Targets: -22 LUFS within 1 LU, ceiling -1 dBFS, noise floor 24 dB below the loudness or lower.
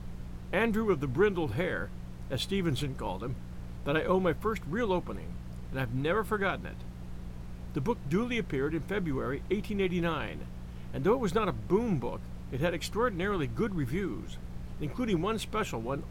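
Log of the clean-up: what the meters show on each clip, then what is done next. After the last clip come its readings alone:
hum 60 Hz; harmonics up to 180 Hz; hum level -41 dBFS; noise floor -43 dBFS; noise floor target -56 dBFS; loudness -32.0 LUFS; peak -13.5 dBFS; loudness target -22.0 LUFS
-> de-hum 60 Hz, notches 3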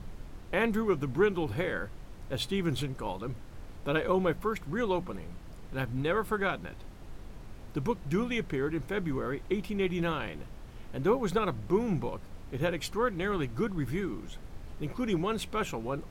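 hum none; noise floor -46 dBFS; noise floor target -56 dBFS
-> noise print and reduce 10 dB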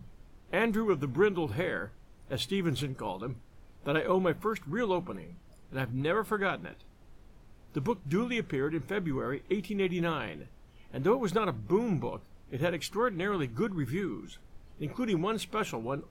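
noise floor -56 dBFS; loudness -32.0 LUFS; peak -14.0 dBFS; loudness target -22.0 LUFS
-> gain +10 dB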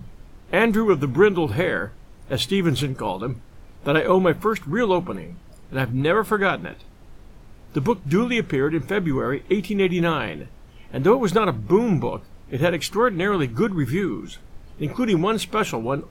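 loudness -22.0 LUFS; peak -4.0 dBFS; noise floor -46 dBFS

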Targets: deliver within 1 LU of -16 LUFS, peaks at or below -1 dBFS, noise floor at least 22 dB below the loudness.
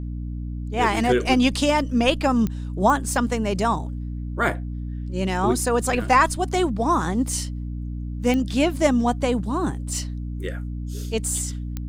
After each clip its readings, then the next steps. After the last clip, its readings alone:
clicks 4; hum 60 Hz; harmonics up to 300 Hz; hum level -27 dBFS; loudness -23.0 LUFS; peak -5.5 dBFS; loudness target -16.0 LUFS
-> de-click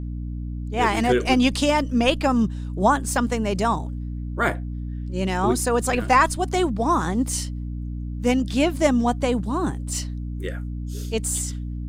clicks 0; hum 60 Hz; harmonics up to 300 Hz; hum level -27 dBFS
-> de-hum 60 Hz, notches 5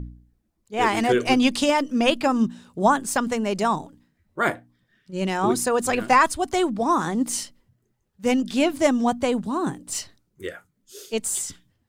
hum none; loudness -23.0 LUFS; peak -6.0 dBFS; loudness target -16.0 LUFS
-> gain +7 dB; limiter -1 dBFS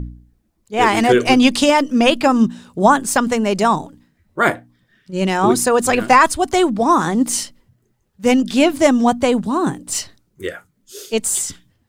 loudness -16.0 LUFS; peak -1.0 dBFS; noise floor -64 dBFS

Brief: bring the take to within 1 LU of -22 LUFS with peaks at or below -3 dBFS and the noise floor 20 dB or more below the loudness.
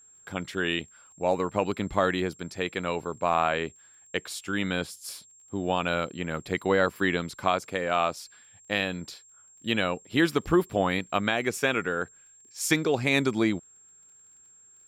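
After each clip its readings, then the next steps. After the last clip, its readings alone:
ticks 21/s; steady tone 7500 Hz; tone level -53 dBFS; loudness -28.0 LUFS; peak -9.5 dBFS; loudness target -22.0 LUFS
-> de-click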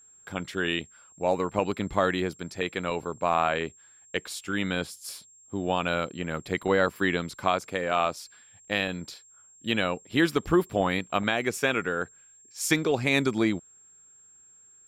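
ticks 0/s; steady tone 7500 Hz; tone level -53 dBFS
-> notch 7500 Hz, Q 30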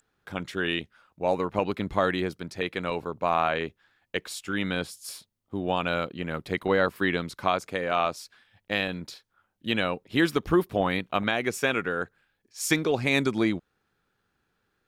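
steady tone none; loudness -28.0 LUFS; peak -9.5 dBFS; loudness target -22.0 LUFS
-> gain +6 dB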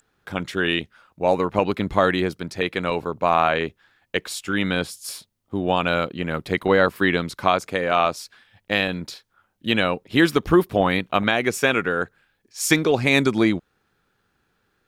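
loudness -22.0 LUFS; peak -3.5 dBFS; noise floor -71 dBFS

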